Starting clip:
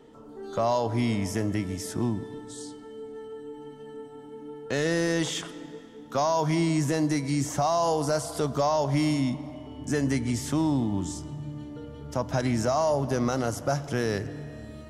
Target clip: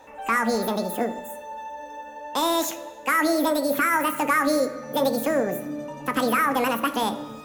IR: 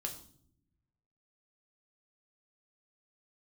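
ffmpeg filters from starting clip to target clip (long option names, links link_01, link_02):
-filter_complex "[0:a]asplit=2[link_01][link_02];[link_02]highpass=frequency=72:poles=1[link_03];[1:a]atrim=start_sample=2205[link_04];[link_03][link_04]afir=irnorm=-1:irlink=0,volume=-1.5dB[link_05];[link_01][link_05]amix=inputs=2:normalize=0,asetrate=88200,aresample=44100,volume=-1dB"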